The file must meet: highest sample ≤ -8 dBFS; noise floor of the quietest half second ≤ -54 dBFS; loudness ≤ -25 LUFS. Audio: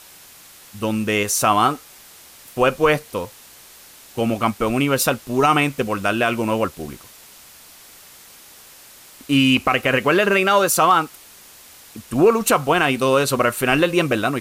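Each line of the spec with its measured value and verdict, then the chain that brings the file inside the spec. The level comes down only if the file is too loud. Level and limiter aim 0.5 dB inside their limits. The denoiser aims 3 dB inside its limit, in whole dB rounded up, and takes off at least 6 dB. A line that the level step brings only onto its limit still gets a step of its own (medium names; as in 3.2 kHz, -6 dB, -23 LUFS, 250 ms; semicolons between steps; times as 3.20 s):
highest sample -5.5 dBFS: fail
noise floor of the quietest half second -45 dBFS: fail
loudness -18.5 LUFS: fail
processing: noise reduction 6 dB, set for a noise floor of -45 dBFS; trim -7 dB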